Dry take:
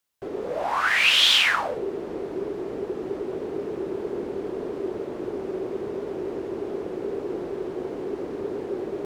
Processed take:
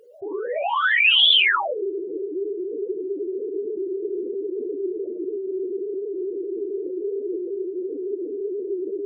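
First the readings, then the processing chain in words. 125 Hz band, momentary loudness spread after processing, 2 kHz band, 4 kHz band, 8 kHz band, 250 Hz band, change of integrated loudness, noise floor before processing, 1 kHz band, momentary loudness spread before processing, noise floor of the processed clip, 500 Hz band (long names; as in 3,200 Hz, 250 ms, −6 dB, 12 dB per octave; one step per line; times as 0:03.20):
below −25 dB, 14 LU, +2.5 dB, +3.0 dB, below −40 dB, +1.5 dB, +2.5 dB, −35 dBFS, +1.5 dB, 14 LU, −32 dBFS, +3.0 dB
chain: expanding power law on the bin magnitudes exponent 3.9
on a send: backwards echo 418 ms −23 dB
on the sum: level +3.5 dB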